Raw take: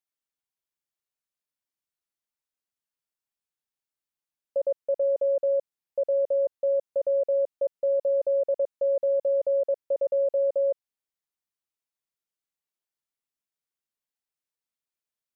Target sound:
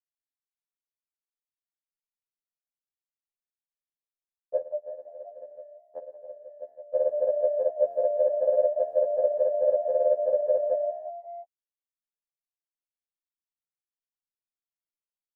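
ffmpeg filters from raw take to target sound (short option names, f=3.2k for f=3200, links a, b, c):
-filter_complex "[0:a]acontrast=80,lowshelf=f=370:g=-5,asplit=3[a][b][c];[a]afade=t=out:st=4.58:d=0.02[d];[b]acompressor=threshold=-42dB:ratio=4,afade=t=in:st=4.58:d=0.02,afade=t=out:st=6.85:d=0.02[e];[c]afade=t=in:st=6.85:d=0.02[f];[d][e][f]amix=inputs=3:normalize=0,equalizer=f=630:t=o:w=1.4:g=10.5,asplit=5[g][h][i][j][k];[h]adelay=176,afreqshift=34,volume=-16dB[l];[i]adelay=352,afreqshift=68,volume=-22.2dB[m];[j]adelay=528,afreqshift=102,volume=-28.4dB[n];[k]adelay=704,afreqshift=136,volume=-34.6dB[o];[g][l][m][n][o]amix=inputs=5:normalize=0,anlmdn=0.158,afftfilt=real='re*2*eq(mod(b,4),0)':imag='im*2*eq(mod(b,4),0)':win_size=2048:overlap=0.75"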